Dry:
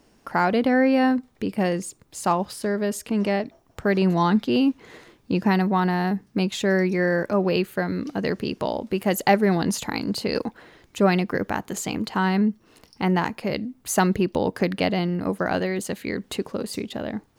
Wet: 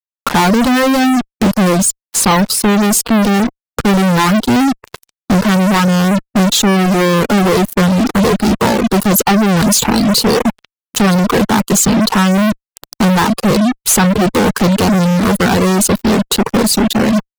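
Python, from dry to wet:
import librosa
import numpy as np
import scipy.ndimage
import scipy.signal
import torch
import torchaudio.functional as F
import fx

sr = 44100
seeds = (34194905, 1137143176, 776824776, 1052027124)

y = fx.fixed_phaser(x, sr, hz=440.0, stages=8)
y = fx.small_body(y, sr, hz=(230.0, 680.0, 4000.0), ring_ms=35, db=7)
y = fx.fuzz(y, sr, gain_db=45.0, gate_db=-40.0)
y = fx.dereverb_blind(y, sr, rt60_s=0.65)
y = F.gain(torch.from_numpy(y), 5.0).numpy()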